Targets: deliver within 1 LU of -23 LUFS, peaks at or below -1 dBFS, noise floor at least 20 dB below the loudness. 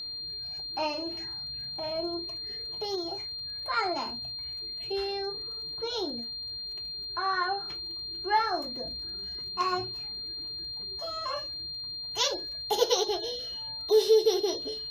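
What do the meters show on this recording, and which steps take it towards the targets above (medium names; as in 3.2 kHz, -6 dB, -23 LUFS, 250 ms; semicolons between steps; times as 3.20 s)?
tick rate 31 per s; steady tone 4.2 kHz; tone level -35 dBFS; loudness -30.5 LUFS; peak level -11.0 dBFS; loudness target -23.0 LUFS
-> de-click; band-stop 4.2 kHz, Q 30; trim +7.5 dB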